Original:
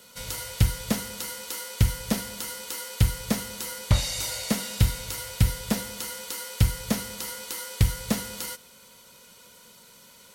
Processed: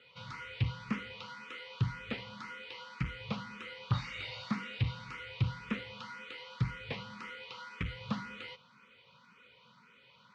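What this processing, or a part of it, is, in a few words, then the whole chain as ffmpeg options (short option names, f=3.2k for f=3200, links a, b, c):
barber-pole phaser into a guitar amplifier: -filter_complex "[0:a]asplit=2[a][b];[b]afreqshift=1.9[c];[a][c]amix=inputs=2:normalize=1,asoftclip=type=tanh:threshold=-19dB,highpass=97,equalizer=f=130:t=q:w=4:g=7,equalizer=f=340:t=q:w=4:g=-7,equalizer=f=650:t=q:w=4:g=-10,equalizer=f=1.2k:t=q:w=4:g=9,equalizer=f=2.4k:t=q:w=4:g=7,lowpass=f=3.6k:w=0.5412,lowpass=f=3.6k:w=1.3066,volume=-4.5dB"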